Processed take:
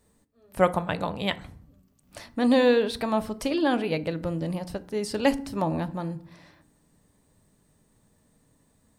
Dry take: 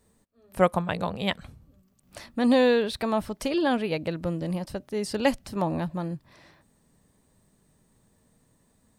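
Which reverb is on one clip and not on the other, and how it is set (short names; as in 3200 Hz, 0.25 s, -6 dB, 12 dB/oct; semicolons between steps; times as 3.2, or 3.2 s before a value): FDN reverb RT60 0.57 s, low-frequency decay 1.55×, high-frequency decay 0.55×, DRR 12 dB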